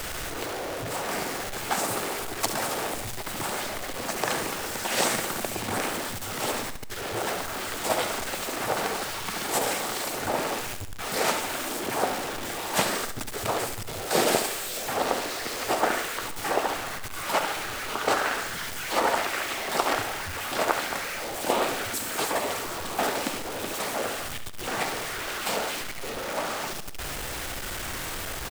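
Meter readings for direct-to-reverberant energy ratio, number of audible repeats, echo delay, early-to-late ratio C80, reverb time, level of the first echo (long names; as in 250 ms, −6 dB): no reverb audible, 4, 70 ms, no reverb audible, no reverb audible, −10.5 dB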